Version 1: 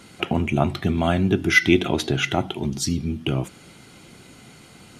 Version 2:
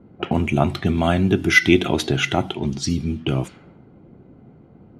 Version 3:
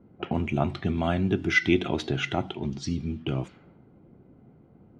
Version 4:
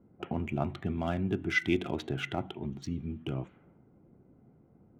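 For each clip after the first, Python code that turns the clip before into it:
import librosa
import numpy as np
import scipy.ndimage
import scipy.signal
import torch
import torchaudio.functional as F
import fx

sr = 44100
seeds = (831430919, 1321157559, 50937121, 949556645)

y1 = fx.env_lowpass(x, sr, base_hz=450.0, full_db=-19.5)
y1 = y1 * 10.0 ** (2.0 / 20.0)
y2 = fx.air_absorb(y1, sr, metres=91.0)
y2 = y2 * 10.0 ** (-7.0 / 20.0)
y3 = fx.wiener(y2, sr, points=9)
y3 = y3 * 10.0 ** (-6.0 / 20.0)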